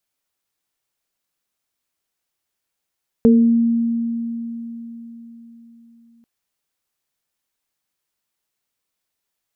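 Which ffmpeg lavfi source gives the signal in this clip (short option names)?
-f lavfi -i "aevalsrc='0.398*pow(10,-3*t/4.23)*sin(2*PI*232*t)+0.282*pow(10,-3*t/0.45)*sin(2*PI*454*t)':d=2.99:s=44100"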